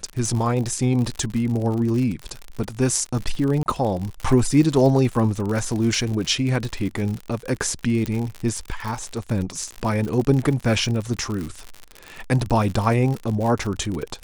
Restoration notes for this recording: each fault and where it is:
crackle 71 per s -26 dBFS
3.63–3.66 s: dropout 29 ms
8.06 s: pop -12 dBFS

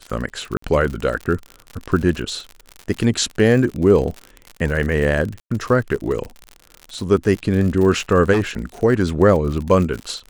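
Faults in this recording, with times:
crackle 68 per s -25 dBFS
0.57–0.62 s: dropout 54 ms
5.40–5.50 s: dropout 105 ms
8.32–8.58 s: clipped -14 dBFS

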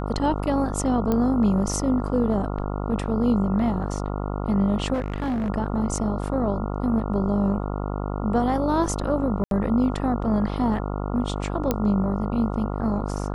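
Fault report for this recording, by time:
buzz 50 Hz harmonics 28 -28 dBFS
1.12 s: pop -12 dBFS
4.93–5.50 s: clipped -22 dBFS
9.44–9.51 s: dropout 72 ms
11.71 s: pop -8 dBFS

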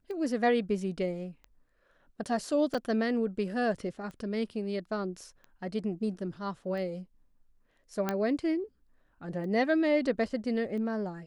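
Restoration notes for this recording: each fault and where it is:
tick 45 rpm -33 dBFS
2.74–2.75 s: dropout 5.6 ms
8.09 s: pop -15 dBFS

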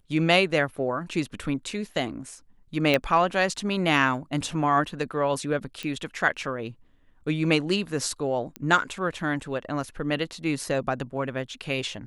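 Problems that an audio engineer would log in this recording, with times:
2.94 s: pop -9 dBFS
5.83 s: pop -19 dBFS
8.56 s: pop -18 dBFS

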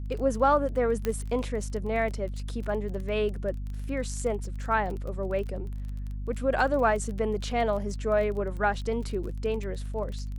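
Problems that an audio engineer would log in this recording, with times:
crackle 25 per s -35 dBFS
hum 50 Hz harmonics 5 -34 dBFS
1.05 s: pop -15 dBFS

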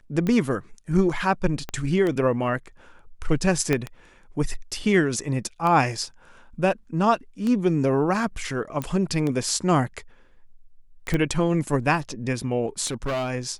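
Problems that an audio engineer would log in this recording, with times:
tick 33 1/3 rpm -15 dBFS
1.69 s: pop -16 dBFS
3.73 s: pop -9 dBFS
8.82 s: pop -15 dBFS
11.14 s: pop -12 dBFS
12.86–13.31 s: clipped -23.5 dBFS

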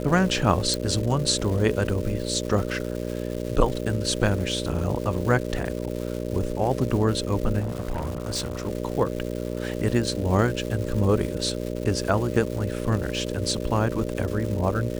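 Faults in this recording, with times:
buzz 60 Hz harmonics 10 -30 dBFS
crackle 450 per s -32 dBFS
0.74 s: pop
7.59–8.68 s: clipped -24 dBFS

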